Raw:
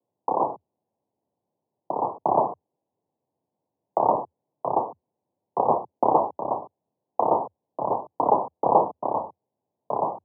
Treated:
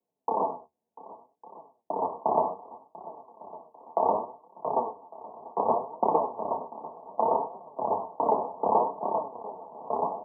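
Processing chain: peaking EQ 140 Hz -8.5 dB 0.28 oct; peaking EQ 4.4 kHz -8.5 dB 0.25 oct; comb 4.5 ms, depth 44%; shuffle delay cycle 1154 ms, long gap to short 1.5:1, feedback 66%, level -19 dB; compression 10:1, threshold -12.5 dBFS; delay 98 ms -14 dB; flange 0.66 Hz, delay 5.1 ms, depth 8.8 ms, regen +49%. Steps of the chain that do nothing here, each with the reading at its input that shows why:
peaking EQ 4.4 kHz: input has nothing above 1.3 kHz

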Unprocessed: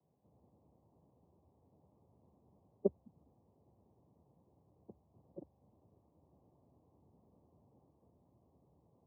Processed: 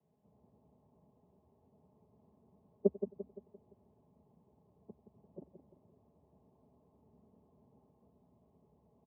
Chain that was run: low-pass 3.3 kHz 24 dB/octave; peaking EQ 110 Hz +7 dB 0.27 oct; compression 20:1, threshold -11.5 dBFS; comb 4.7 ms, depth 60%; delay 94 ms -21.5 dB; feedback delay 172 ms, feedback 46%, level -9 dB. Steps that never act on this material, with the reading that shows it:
low-pass 3.3 kHz: input has nothing above 810 Hz; compression, threshold -11.5 dBFS: peak at its input -19.0 dBFS

